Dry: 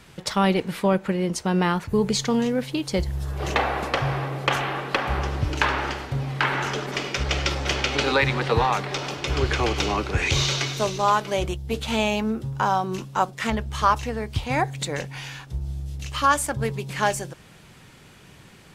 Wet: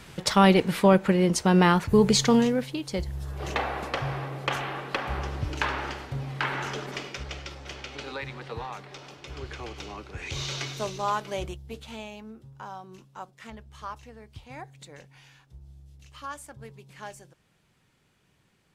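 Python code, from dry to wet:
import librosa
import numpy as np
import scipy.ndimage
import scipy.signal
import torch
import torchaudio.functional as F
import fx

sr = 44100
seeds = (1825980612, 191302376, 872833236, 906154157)

y = fx.gain(x, sr, db=fx.line((2.35, 2.5), (2.77, -6.0), (6.89, -6.0), (7.47, -15.5), (10.14, -15.5), (10.6, -7.5), (11.42, -7.5), (12.11, -18.5)))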